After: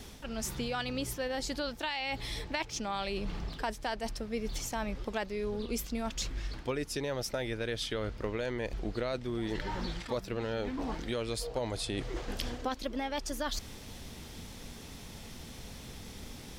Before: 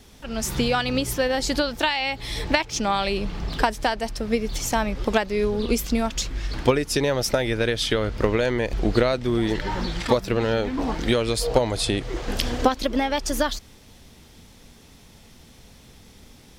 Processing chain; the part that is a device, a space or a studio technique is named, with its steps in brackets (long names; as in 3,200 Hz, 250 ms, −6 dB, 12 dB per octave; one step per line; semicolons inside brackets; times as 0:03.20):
compression on the reversed sound (reversed playback; downward compressor 4 to 1, threshold −38 dBFS, peak gain reduction 21 dB; reversed playback)
level +3 dB